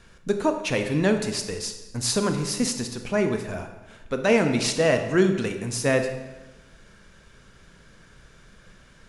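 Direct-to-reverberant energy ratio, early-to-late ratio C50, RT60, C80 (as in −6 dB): 6.0 dB, 8.0 dB, 1.1 s, 10.0 dB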